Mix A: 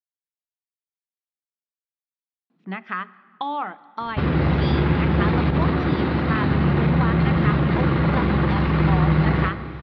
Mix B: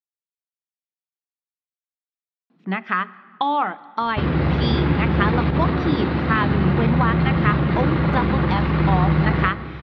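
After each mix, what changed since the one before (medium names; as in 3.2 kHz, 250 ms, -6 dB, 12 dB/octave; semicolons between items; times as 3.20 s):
speech +6.5 dB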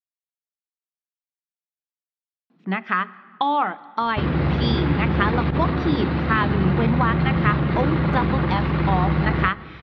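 background: send -9.0 dB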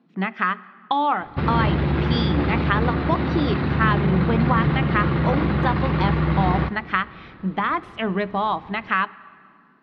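speech: entry -2.50 s; background: entry -2.80 s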